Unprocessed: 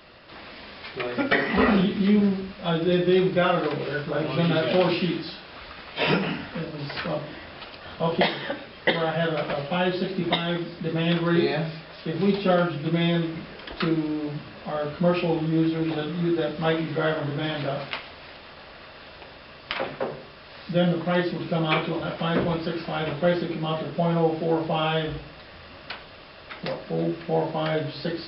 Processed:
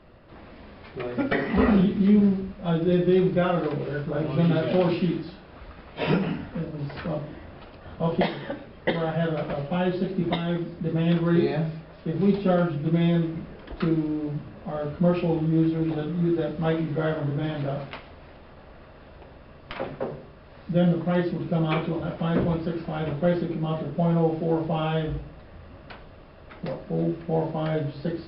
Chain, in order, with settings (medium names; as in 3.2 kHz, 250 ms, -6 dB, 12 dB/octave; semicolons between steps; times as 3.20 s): tilt EQ -2.5 dB/octave; tape noise reduction on one side only decoder only; trim -4 dB